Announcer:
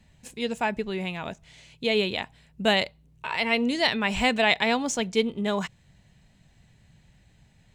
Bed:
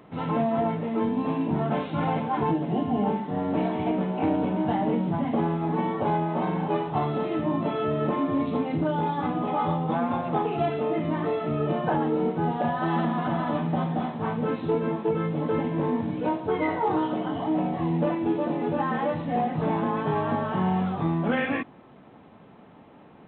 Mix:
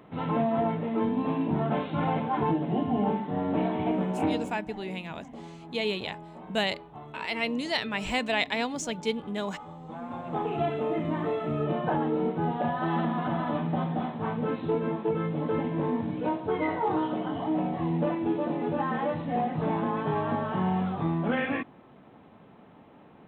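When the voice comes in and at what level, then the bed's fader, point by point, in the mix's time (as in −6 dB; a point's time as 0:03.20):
3.90 s, −5.5 dB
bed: 0:04.26 −1.5 dB
0:04.67 −18.5 dB
0:09.73 −18.5 dB
0:10.51 −2.5 dB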